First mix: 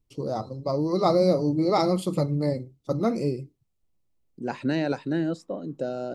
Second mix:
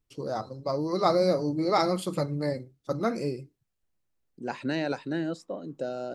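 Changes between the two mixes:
first voice: add peaking EQ 1.6 kHz +11.5 dB 0.34 oct; master: add bass shelf 450 Hz -6.5 dB

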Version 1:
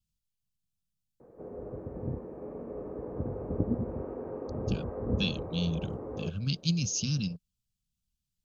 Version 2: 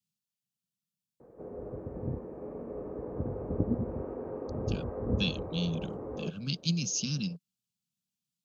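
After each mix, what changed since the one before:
speech: add high-pass 150 Hz 24 dB/octave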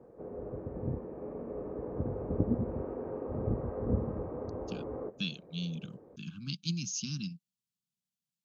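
speech -4.5 dB; background: entry -1.20 s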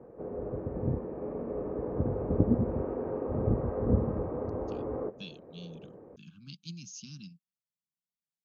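speech -9.0 dB; background +4.5 dB

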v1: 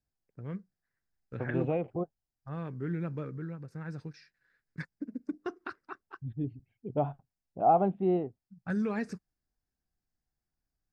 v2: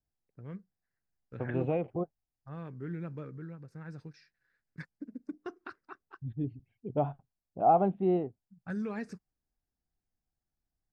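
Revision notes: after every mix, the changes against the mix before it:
first voice -4.5 dB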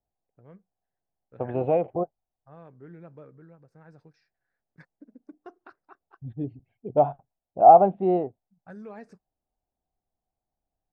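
first voice -10.0 dB; master: add peaking EQ 680 Hz +12 dB 1.4 oct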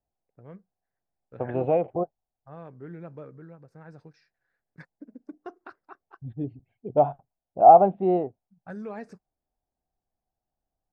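first voice +5.0 dB

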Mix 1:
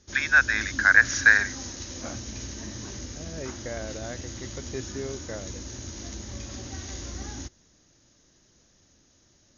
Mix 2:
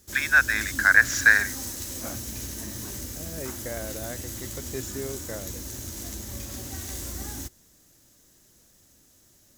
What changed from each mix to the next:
master: remove brick-wall FIR low-pass 6.9 kHz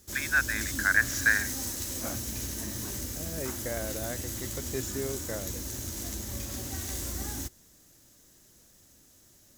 first voice -7.0 dB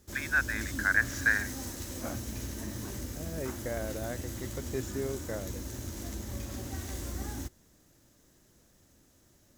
master: add treble shelf 3 kHz -9.5 dB

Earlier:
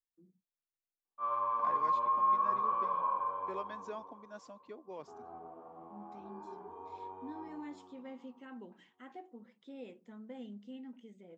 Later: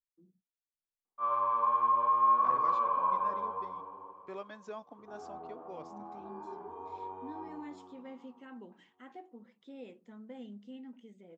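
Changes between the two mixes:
second voice: entry +0.80 s; background +3.5 dB

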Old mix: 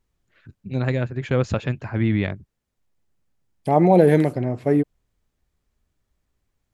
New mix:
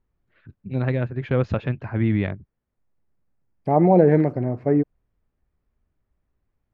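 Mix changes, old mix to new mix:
second voice: add peaking EQ 3.4 kHz -14.5 dB 0.7 oct; master: add distance through air 260 m

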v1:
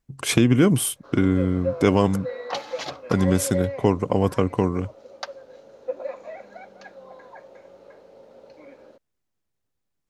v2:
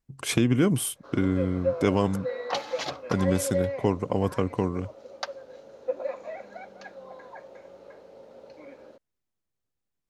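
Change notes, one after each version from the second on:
speech -5.0 dB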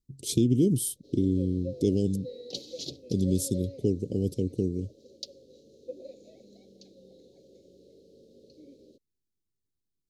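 master: add Chebyshev band-stop 400–3900 Hz, order 3

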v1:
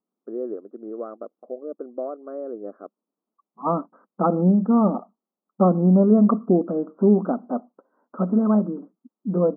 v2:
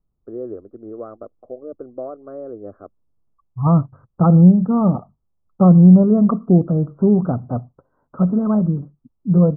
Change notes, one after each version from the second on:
master: remove brick-wall FIR high-pass 190 Hz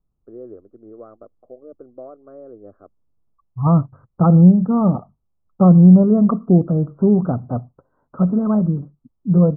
first voice -7.0 dB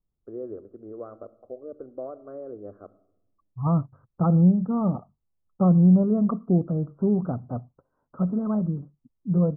second voice -8.0 dB; reverb: on, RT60 0.80 s

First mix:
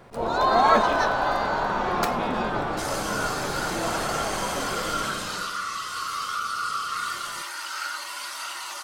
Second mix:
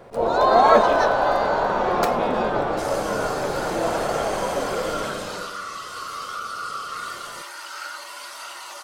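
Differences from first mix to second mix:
second sound -3.5 dB; master: add peaking EQ 530 Hz +8.5 dB 1.1 oct

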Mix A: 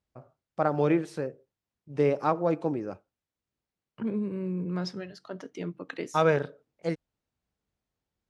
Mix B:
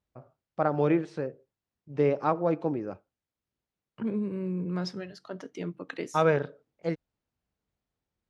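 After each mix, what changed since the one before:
first voice: add distance through air 110 m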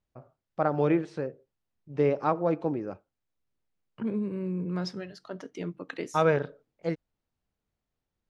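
master: remove high-pass 40 Hz

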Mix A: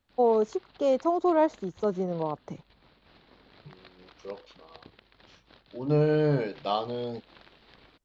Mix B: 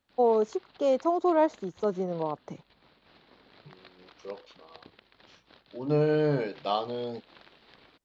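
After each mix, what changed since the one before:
master: add bass shelf 93 Hz -11.5 dB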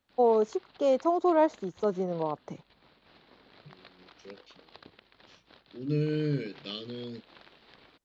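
second voice: add Butterworth band-stop 850 Hz, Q 0.51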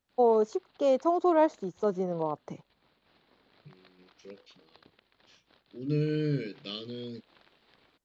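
background -7.0 dB

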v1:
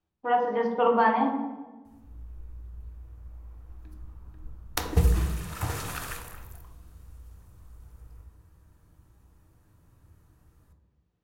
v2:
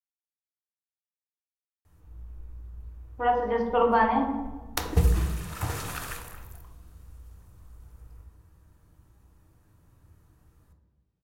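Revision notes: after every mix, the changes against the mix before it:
speech: entry +2.95 s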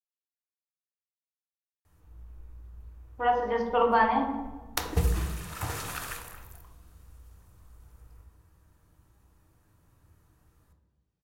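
speech: remove distance through air 88 m; master: add bass shelf 450 Hz -4.5 dB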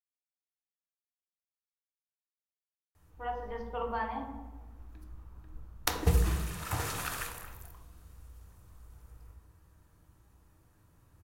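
speech -12.0 dB; background: entry +1.10 s

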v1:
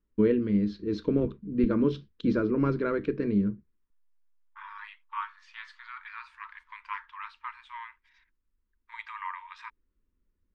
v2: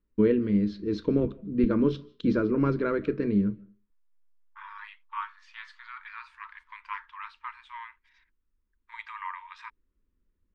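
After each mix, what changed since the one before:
reverb: on, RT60 0.35 s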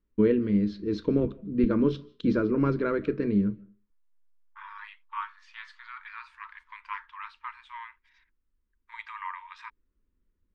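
no change

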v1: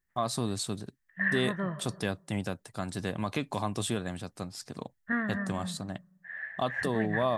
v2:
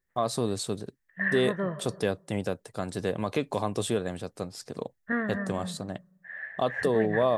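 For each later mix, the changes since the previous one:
master: add peaking EQ 470 Hz +9.5 dB 0.78 oct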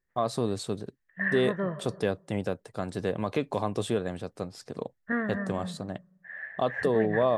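master: add treble shelf 5.1 kHz -8.5 dB

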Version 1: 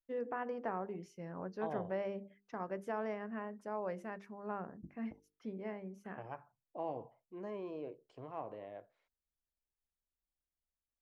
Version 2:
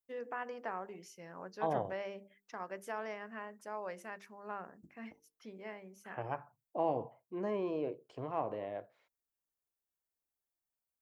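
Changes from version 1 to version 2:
first voice: add tilt EQ +3.5 dB/octave; second voice +7.5 dB

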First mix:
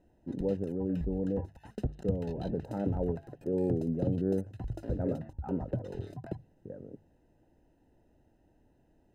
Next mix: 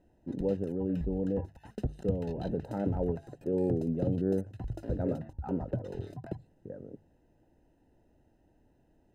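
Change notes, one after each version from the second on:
first voice: remove distance through air 390 m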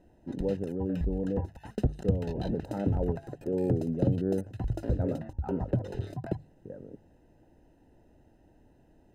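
background +6.0 dB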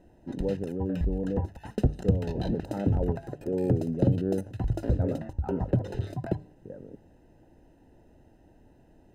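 reverb: on, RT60 0.65 s

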